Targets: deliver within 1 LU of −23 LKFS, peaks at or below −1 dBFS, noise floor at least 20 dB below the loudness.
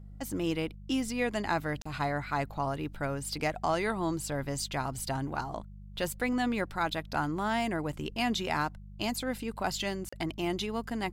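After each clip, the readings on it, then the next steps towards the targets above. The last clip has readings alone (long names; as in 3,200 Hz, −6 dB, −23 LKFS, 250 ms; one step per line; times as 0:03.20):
number of dropouts 2; longest dropout 35 ms; mains hum 50 Hz; hum harmonics up to 200 Hz; level of the hum −44 dBFS; integrated loudness −33.0 LKFS; sample peak −17.5 dBFS; target loudness −23.0 LKFS
→ repair the gap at 0:01.82/0:10.09, 35 ms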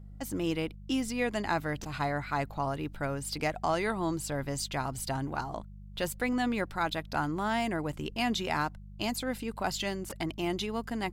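number of dropouts 0; mains hum 50 Hz; hum harmonics up to 200 Hz; level of the hum −44 dBFS
→ hum removal 50 Hz, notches 4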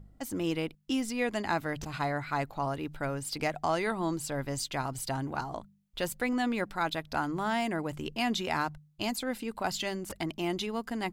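mains hum none found; integrated loudness −33.0 LKFS; sample peak −18.0 dBFS; target loudness −23.0 LKFS
→ level +10 dB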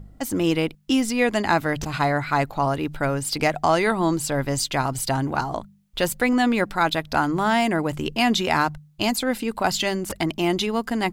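integrated loudness −23.0 LKFS; sample peak −8.0 dBFS; background noise floor −50 dBFS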